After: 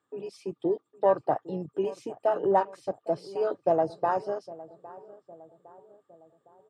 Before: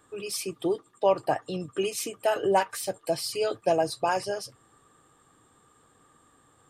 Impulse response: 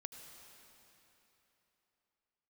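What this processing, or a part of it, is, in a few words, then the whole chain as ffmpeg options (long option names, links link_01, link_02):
over-cleaned archive recording: -filter_complex "[0:a]highpass=120,lowpass=5700,afwtdn=0.0282,asplit=2[link_01][link_02];[link_02]adelay=809,lowpass=frequency=1200:poles=1,volume=-18dB,asplit=2[link_03][link_04];[link_04]adelay=809,lowpass=frequency=1200:poles=1,volume=0.54,asplit=2[link_05][link_06];[link_06]adelay=809,lowpass=frequency=1200:poles=1,volume=0.54,asplit=2[link_07][link_08];[link_08]adelay=809,lowpass=frequency=1200:poles=1,volume=0.54,asplit=2[link_09][link_10];[link_10]adelay=809,lowpass=frequency=1200:poles=1,volume=0.54[link_11];[link_01][link_03][link_05][link_07][link_09][link_11]amix=inputs=6:normalize=0"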